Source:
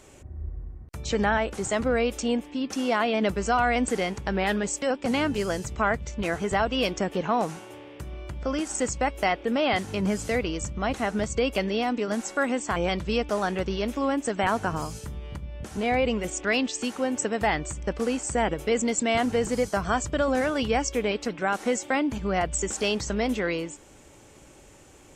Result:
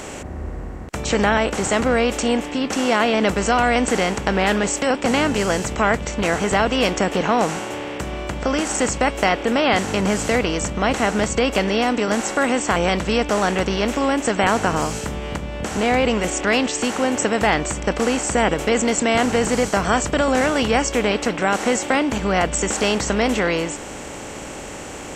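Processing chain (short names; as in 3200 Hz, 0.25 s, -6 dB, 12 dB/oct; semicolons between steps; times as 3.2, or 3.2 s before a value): per-bin compression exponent 0.6; gain +3 dB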